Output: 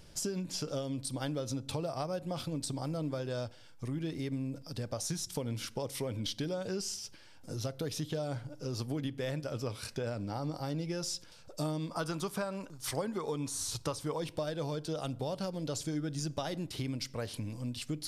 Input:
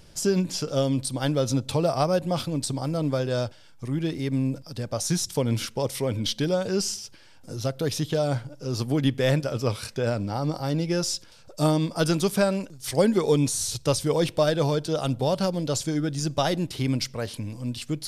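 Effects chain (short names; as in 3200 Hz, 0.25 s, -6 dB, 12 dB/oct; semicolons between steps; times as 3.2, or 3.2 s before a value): 11.89–14.19 bell 1100 Hz +9.5 dB 0.97 oct; compressor 6:1, threshold -29 dBFS, peak gain reduction 15 dB; FDN reverb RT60 0.67 s, low-frequency decay 1.2×, high-frequency decay 0.55×, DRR 19.5 dB; gain -4 dB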